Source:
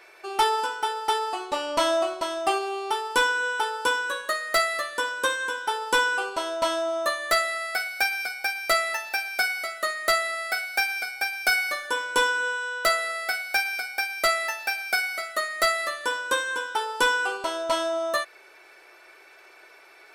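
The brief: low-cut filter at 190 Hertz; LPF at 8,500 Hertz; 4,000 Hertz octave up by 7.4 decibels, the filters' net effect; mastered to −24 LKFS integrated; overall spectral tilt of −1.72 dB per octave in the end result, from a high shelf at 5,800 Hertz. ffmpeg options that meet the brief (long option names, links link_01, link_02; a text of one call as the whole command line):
ffmpeg -i in.wav -af "highpass=190,lowpass=8500,equalizer=frequency=4000:width_type=o:gain=7.5,highshelf=frequency=5800:gain=5,volume=-1.5dB" out.wav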